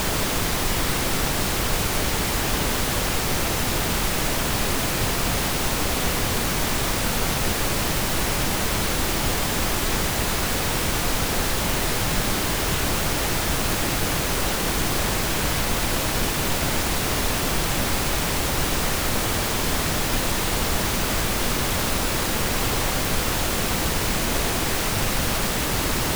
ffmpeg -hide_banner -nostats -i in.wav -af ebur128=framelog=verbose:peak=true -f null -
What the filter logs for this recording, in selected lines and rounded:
Integrated loudness:
  I:         -22.6 LUFS
  Threshold: -32.6 LUFS
Loudness range:
  LRA:         0.1 LU
  Threshold: -42.6 LUFS
  LRA low:   -22.6 LUFS
  LRA high:  -22.5 LUFS
True peak:
  Peak:       -8.0 dBFS